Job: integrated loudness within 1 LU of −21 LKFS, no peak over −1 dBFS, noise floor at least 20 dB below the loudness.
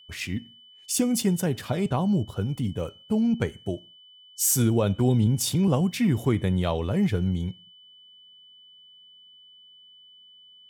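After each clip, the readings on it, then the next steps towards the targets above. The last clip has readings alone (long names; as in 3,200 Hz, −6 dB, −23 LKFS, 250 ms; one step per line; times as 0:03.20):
interfering tone 3,000 Hz; level of the tone −50 dBFS; integrated loudness −25.0 LKFS; sample peak −12.0 dBFS; target loudness −21.0 LKFS
→ notch filter 3,000 Hz, Q 30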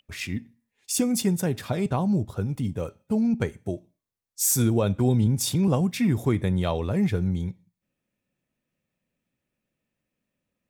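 interfering tone none found; integrated loudness −25.0 LKFS; sample peak −12.0 dBFS; target loudness −21.0 LKFS
→ level +4 dB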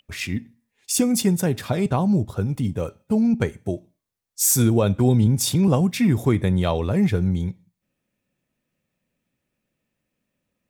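integrated loudness −21.0 LKFS; sample peak −8.0 dBFS; background noise floor −80 dBFS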